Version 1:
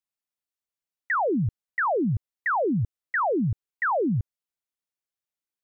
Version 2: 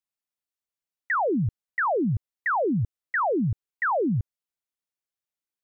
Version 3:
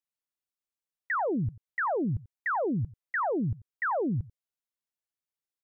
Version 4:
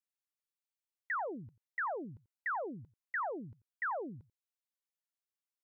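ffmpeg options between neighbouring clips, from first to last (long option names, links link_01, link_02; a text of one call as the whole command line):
ffmpeg -i in.wav -af anull out.wav
ffmpeg -i in.wav -af "aecho=1:1:89:0.1,volume=-4.5dB" out.wav
ffmpeg -i in.wav -af "highpass=frequency=800:poles=1,volume=-5dB" out.wav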